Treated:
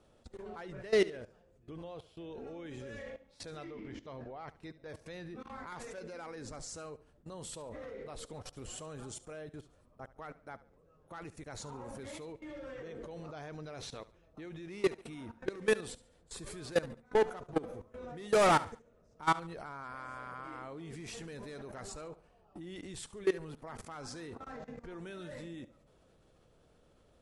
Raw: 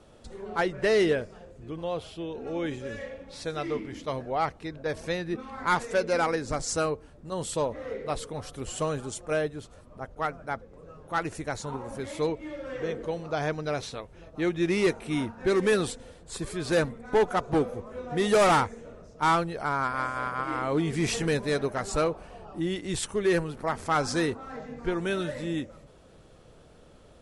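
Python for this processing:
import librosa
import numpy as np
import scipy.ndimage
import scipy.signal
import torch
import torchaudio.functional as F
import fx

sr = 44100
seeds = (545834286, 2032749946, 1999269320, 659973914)

y = fx.level_steps(x, sr, step_db=21)
y = fx.air_absorb(y, sr, metres=97.0, at=(3.64, 4.48))
y = fx.echo_feedback(y, sr, ms=71, feedback_pct=35, wet_db=-18.0)
y = y * 10.0 ** (-3.0 / 20.0)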